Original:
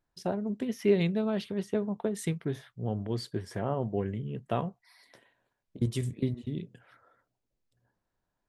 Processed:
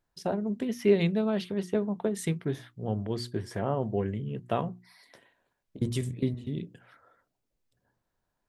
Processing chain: hum notches 60/120/180/240/300/360 Hz; trim +2 dB

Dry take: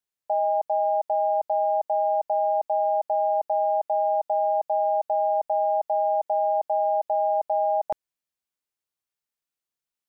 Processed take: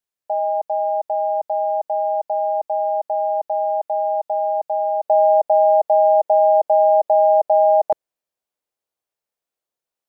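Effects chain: peaking EQ 570 Hz +3 dB 1.5 oct, from 5.05 s +11 dB

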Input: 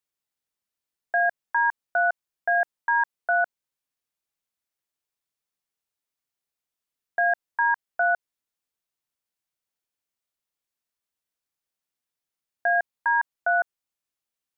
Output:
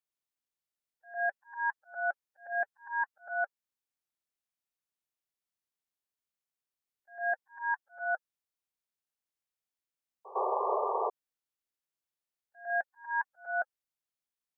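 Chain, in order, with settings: coarse spectral quantiser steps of 30 dB; slow attack 133 ms; painted sound noise, 10.35–11.10 s, 370–1200 Hz -24 dBFS; pre-echo 105 ms -18 dB; trim -6.5 dB

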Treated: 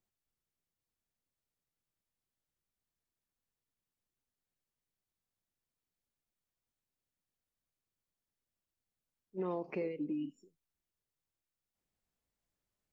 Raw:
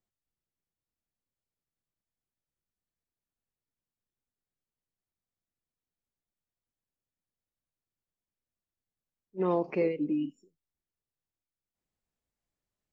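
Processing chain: compression 3:1, threshold -37 dBFS, peak gain reduction 10.5 dB

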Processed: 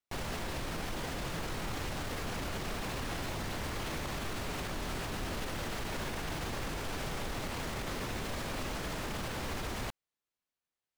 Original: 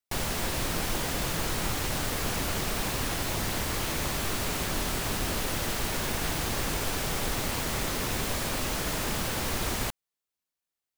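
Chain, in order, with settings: low-pass 3.5 kHz 6 dB/octave; peak limiter -28.5 dBFS, peak gain reduction 10 dB

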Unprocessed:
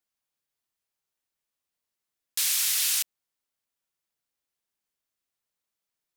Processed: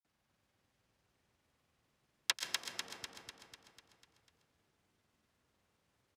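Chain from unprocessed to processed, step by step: low-pass that closes with the level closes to 320 Hz, closed at -24.5 dBFS; high-pass 97 Hz 24 dB/octave; RIAA curve playback; frequency shift -28 Hz; granulator; feedback delay 248 ms, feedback 56%, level -4 dB; on a send at -10 dB: reverberation RT60 0.60 s, pre-delay 108 ms; on the sum: trim +13 dB

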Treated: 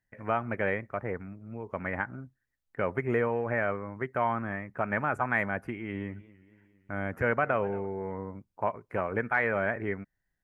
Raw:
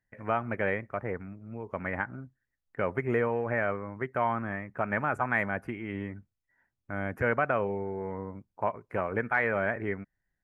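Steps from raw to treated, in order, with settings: 5.73–7.86 s: modulated delay 229 ms, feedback 60%, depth 130 cents, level -21 dB

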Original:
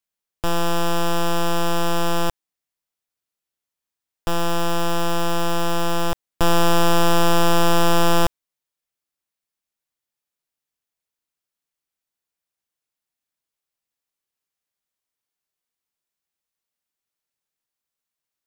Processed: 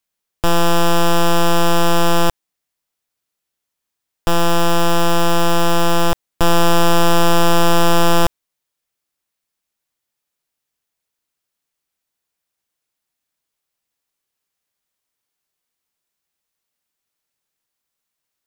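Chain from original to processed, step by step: peak limiter -16.5 dBFS, peak gain reduction 3 dB; trim +6.5 dB

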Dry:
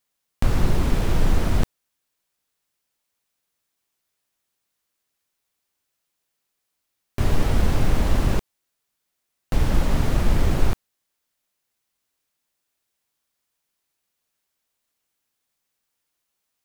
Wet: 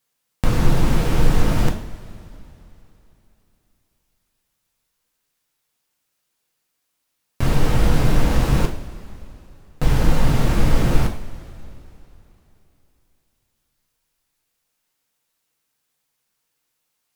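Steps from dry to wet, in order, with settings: tape speed -3%; two-slope reverb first 0.46 s, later 3.3 s, from -18 dB, DRR 2 dB; trim +2 dB

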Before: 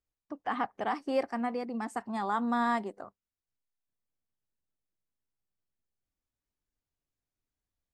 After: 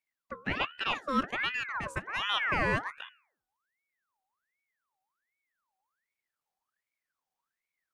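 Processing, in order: de-hum 71.9 Hz, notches 11; ring modulator with a swept carrier 1.5 kHz, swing 50%, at 1.3 Hz; trim +3 dB

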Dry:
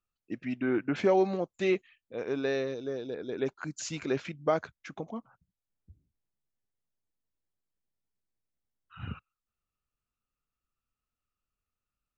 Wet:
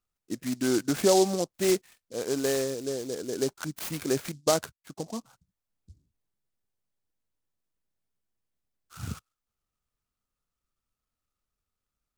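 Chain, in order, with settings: 3.79–5.17 s: gate -43 dBFS, range -19 dB; delay time shaken by noise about 5.7 kHz, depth 0.09 ms; trim +3 dB

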